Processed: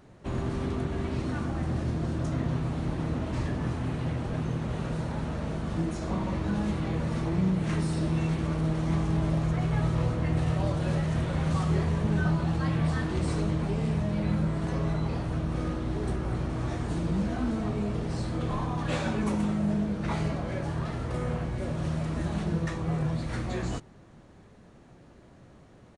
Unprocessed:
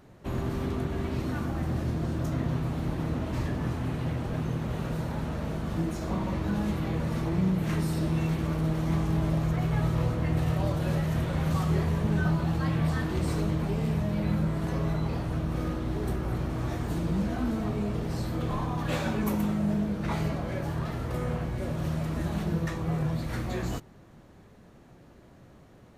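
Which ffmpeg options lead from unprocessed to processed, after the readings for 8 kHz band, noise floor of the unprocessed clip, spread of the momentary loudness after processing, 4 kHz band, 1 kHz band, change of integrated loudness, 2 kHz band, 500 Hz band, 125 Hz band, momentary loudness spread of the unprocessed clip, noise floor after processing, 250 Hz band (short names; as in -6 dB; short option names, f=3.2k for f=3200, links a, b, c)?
-0.5 dB, -53 dBFS, 5 LU, 0.0 dB, 0.0 dB, 0.0 dB, 0.0 dB, 0.0 dB, 0.0 dB, 5 LU, -53 dBFS, 0.0 dB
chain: -af "aresample=22050,aresample=44100"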